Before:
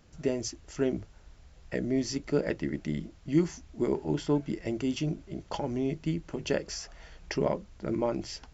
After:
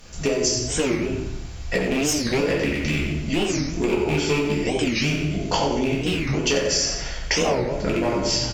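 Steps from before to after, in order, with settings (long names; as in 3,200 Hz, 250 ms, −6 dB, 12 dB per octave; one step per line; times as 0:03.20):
loose part that buzzes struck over −28 dBFS, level −27 dBFS
asymmetric clip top −20 dBFS
high-shelf EQ 2,500 Hz +10 dB
rectangular room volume 190 cubic metres, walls mixed, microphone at 1.8 metres
0:01.78–0:02.39: tube saturation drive 18 dB, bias 0.55
downward compressor, threshold −26 dBFS, peak gain reduction 11 dB
parametric band 240 Hz −5 dB 0.84 octaves
repeating echo 91 ms, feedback 42%, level −10 dB
wow of a warped record 45 rpm, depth 250 cents
level +8.5 dB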